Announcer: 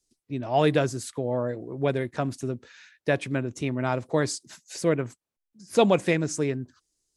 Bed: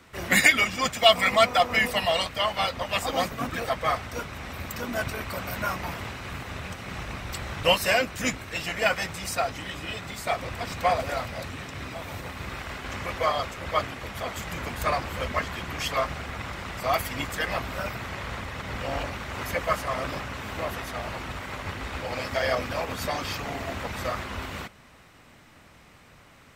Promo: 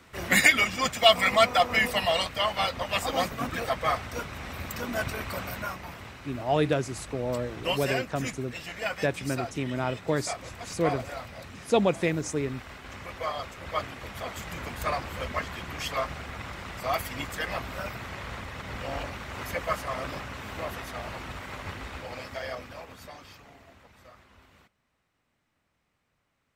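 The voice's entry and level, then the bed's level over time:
5.95 s, -3.0 dB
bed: 5.40 s -1 dB
5.81 s -8 dB
13.11 s -8 dB
14.05 s -3.5 dB
21.73 s -3.5 dB
23.89 s -23 dB

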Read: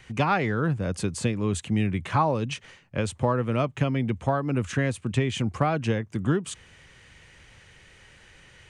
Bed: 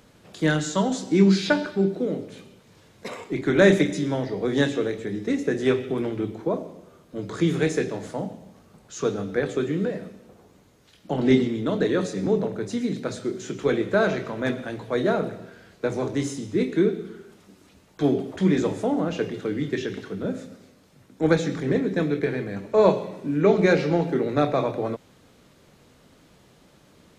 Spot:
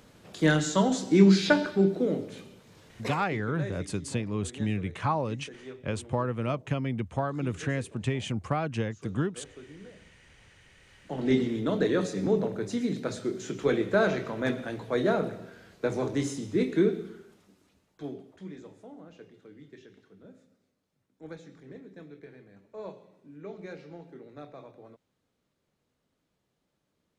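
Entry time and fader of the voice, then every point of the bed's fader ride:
2.90 s, -5.0 dB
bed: 3.09 s -1 dB
3.53 s -22.5 dB
10.17 s -22.5 dB
11.56 s -3 dB
16.97 s -3 dB
18.59 s -23.5 dB

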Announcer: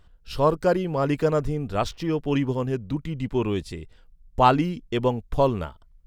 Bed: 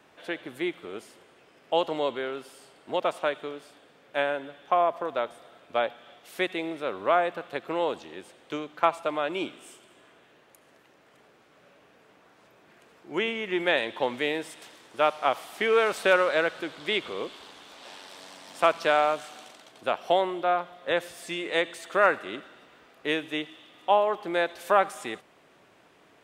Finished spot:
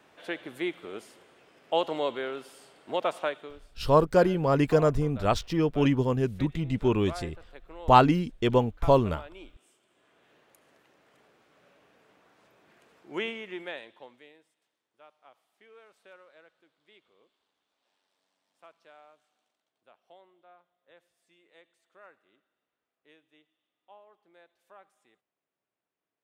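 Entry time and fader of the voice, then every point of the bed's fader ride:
3.50 s, 0.0 dB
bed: 3.21 s -1.5 dB
3.87 s -17 dB
9.74 s -17 dB
10.32 s -4.5 dB
13.26 s -4.5 dB
14.53 s -32.5 dB

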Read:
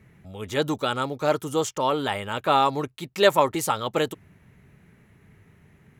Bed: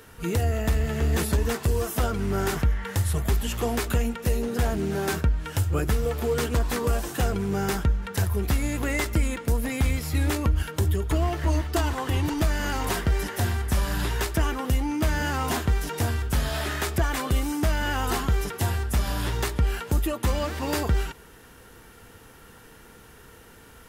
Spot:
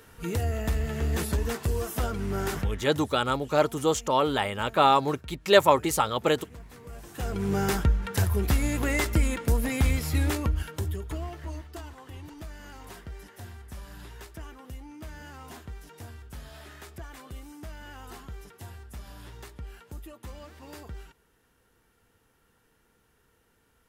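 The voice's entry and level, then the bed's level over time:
2.30 s, 0.0 dB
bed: 2.58 s -4 dB
3.12 s -22 dB
6.84 s -22 dB
7.47 s 0 dB
10.09 s 0 dB
11.96 s -18 dB

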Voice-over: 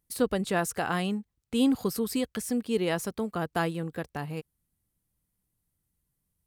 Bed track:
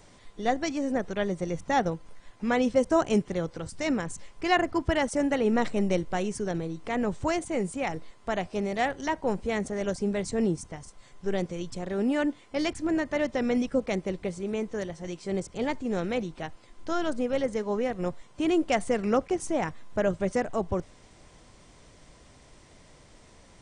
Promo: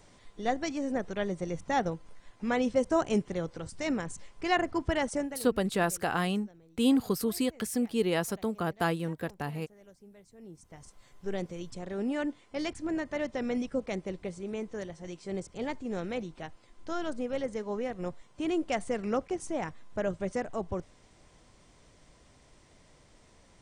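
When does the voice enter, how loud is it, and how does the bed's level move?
5.25 s, -0.5 dB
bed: 5.17 s -3.5 dB
5.52 s -26 dB
10.39 s -26 dB
10.85 s -5.5 dB

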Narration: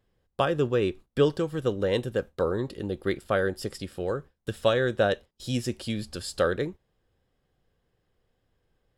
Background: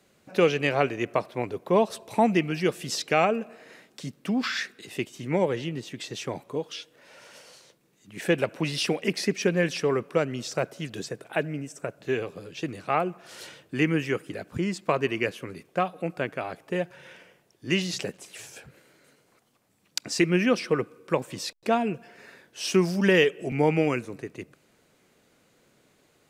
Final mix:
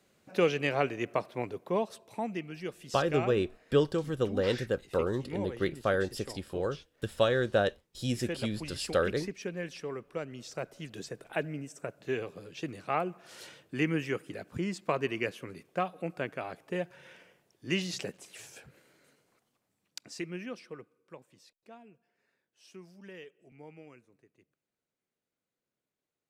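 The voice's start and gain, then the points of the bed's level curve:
2.55 s, -3.0 dB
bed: 1.45 s -5 dB
2.21 s -13.5 dB
10.05 s -13.5 dB
11.25 s -5.5 dB
19.05 s -5.5 dB
21.63 s -28 dB

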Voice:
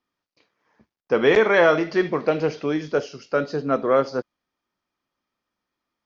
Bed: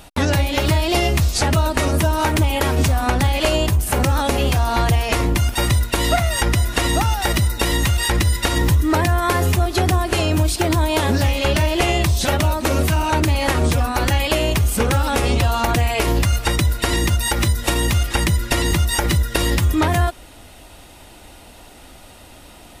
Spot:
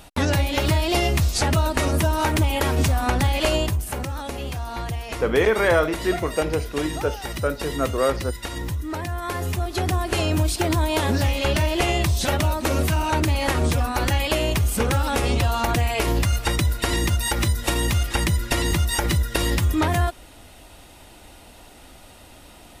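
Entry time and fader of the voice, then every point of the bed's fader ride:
4.10 s, -2.5 dB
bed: 3.56 s -3 dB
4.08 s -12 dB
9.00 s -12 dB
10.20 s -3.5 dB

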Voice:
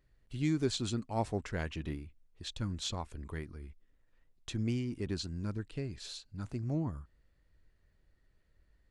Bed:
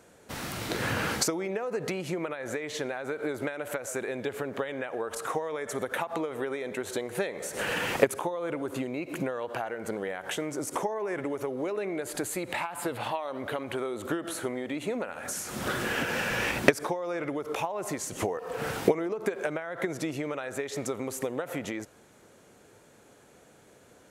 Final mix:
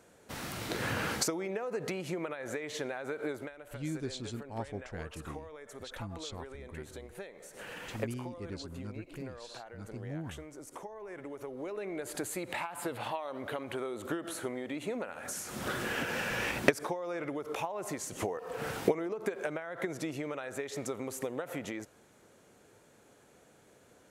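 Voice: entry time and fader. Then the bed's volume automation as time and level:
3.40 s, -6.0 dB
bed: 3.31 s -4 dB
3.55 s -14.5 dB
10.86 s -14.5 dB
12.07 s -4.5 dB

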